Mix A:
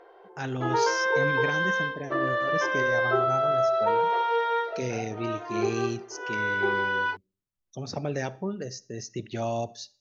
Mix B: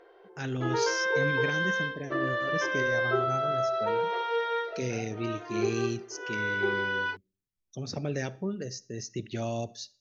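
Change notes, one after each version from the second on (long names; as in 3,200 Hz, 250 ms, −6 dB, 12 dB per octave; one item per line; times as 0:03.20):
master: add parametric band 860 Hz −8 dB 1.1 octaves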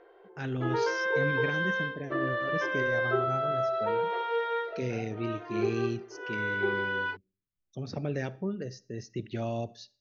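master: add high-frequency loss of the air 180 metres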